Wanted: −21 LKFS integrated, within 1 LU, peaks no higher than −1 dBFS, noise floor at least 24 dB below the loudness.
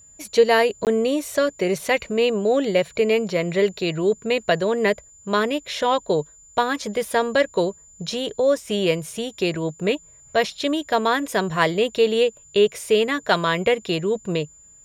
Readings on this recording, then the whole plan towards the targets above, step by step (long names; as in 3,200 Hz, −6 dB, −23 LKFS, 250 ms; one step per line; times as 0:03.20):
number of dropouts 1; longest dropout 18 ms; interfering tone 7,100 Hz; level of the tone −47 dBFS; integrated loudness −22.0 LKFS; sample peak −3.0 dBFS; target loudness −21.0 LKFS
→ repair the gap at 0:00.85, 18 ms
notch filter 7,100 Hz, Q 30
level +1 dB